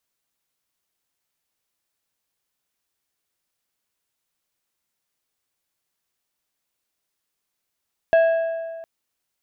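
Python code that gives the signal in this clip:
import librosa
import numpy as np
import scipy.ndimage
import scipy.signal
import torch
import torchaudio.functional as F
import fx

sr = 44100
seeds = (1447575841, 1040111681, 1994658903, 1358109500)

y = fx.strike_metal(sr, length_s=0.71, level_db=-11.0, body='plate', hz=659.0, decay_s=1.81, tilt_db=11.5, modes=5)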